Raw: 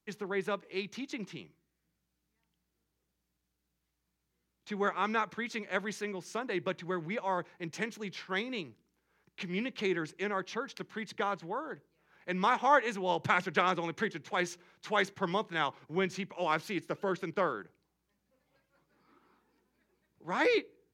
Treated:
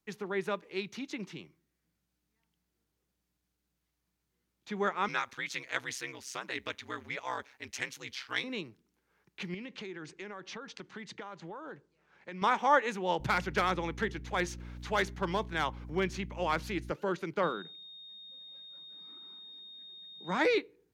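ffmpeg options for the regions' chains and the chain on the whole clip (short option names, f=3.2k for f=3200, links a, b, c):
-filter_complex "[0:a]asettb=1/sr,asplit=3[a][b][c];[a]atrim=end=5.084[d];[b]atrim=start=5.08:end=8.44,asetpts=PTS-STARTPTS,afade=t=in:d=0.004:c=qsin,afade=t=out:st=3.356:d=0.004:c=qsin,tiltshelf=f=1.1k:g=-8.5,aeval=exprs='val(0)*sin(2*PI*65*n/s)':c=same[e];[c]atrim=start=8.436[f];[d][e]acrossfade=d=0.004:c1=hsin:c2=qsin[g];[g][f]acrossfade=d=0.004:c1=qsin:c2=hsin,asettb=1/sr,asplit=3[h][i][j];[h]atrim=end=9.544[k];[i]atrim=start=9.54:end=12.42,asetpts=PTS-STARTPTS,afade=t=in:d=0.004:c=qsin,afade=t=out:st=2.876:d=0.004:c=qsin,lowpass=f=8.4k:w=0.5412,lowpass=f=8.4k:w=1.3066,acompressor=threshold=-39dB:ratio=8:attack=3.2:release=140:knee=1:detection=peak[l];[j]atrim=start=12.416[m];[k][l]acrossfade=d=0.004:c1=hsin:c2=qsin[n];[n][m]acrossfade=d=0.004:c1=qsin:c2=hsin,asettb=1/sr,asplit=3[o][p][q];[o]atrim=end=13.204[r];[p]atrim=start=13.2:end=16.92,asetpts=PTS-STARTPTS,afade=t=in:d=0.004:c=qsin,afade=t=out:st=3.716:d=0.004:c=qsin,asoftclip=type=hard:threshold=-21dB,acompressor=mode=upward:threshold=-47dB:ratio=2.5:attack=3.2:release=140:knee=2.83:detection=peak,aeval=exprs='val(0)+0.00708*(sin(2*PI*60*n/s)+sin(2*PI*2*60*n/s)/2+sin(2*PI*3*60*n/s)/3+sin(2*PI*4*60*n/s)/4+sin(2*PI*5*60*n/s)/5)':c=same[s];[q]atrim=start=16.916[t];[r][s]acrossfade=d=0.004:c1=hsin:c2=qsin[u];[u][t]acrossfade=d=0.004:c1=qsin:c2=hsin,asettb=1/sr,asplit=3[v][w][x];[v]atrim=end=17.434[y];[w]atrim=start=17.43:end=20.46,asetpts=PTS-STARTPTS,afade=t=in:d=0.004:c=qsin,afade=t=out:st=3.026:d=0.004:c=qsin,lowshelf=f=140:t=q:w=3:g=-6.5,aeval=exprs='val(0)+0.00447*sin(2*PI*3700*n/s)':c=same[z];[x]atrim=start=20.456[aa];[y][z]acrossfade=d=0.004:c1=hsin:c2=qsin[ab];[ab][aa]acrossfade=d=0.004:c1=qsin:c2=hsin"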